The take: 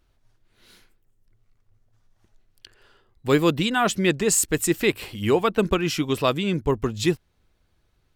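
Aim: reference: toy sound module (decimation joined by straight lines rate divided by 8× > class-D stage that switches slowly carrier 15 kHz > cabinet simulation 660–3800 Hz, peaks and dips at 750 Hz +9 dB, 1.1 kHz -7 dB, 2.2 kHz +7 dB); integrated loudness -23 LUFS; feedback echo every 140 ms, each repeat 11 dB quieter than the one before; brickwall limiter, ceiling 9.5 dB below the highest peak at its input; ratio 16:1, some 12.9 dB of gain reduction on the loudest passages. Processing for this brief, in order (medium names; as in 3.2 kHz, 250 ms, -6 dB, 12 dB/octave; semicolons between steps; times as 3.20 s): compression 16:1, threshold -27 dBFS; peak limiter -26.5 dBFS; feedback delay 140 ms, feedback 28%, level -11 dB; decimation joined by straight lines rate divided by 8×; class-D stage that switches slowly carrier 15 kHz; cabinet simulation 660–3800 Hz, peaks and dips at 750 Hz +9 dB, 1.1 kHz -7 dB, 2.2 kHz +7 dB; trim +18.5 dB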